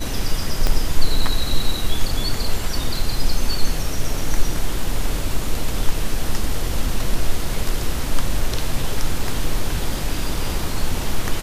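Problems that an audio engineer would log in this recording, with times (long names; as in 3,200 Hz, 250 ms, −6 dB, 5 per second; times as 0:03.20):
0:00.67: click −5 dBFS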